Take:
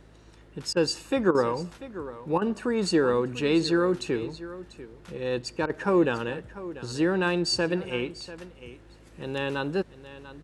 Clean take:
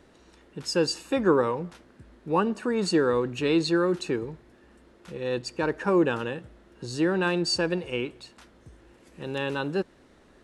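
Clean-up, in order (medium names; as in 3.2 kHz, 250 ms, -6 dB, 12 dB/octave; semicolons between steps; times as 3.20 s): de-hum 52.9 Hz, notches 3; interpolate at 0.73/1.31/2.38/5.66 s, 35 ms; inverse comb 692 ms -15.5 dB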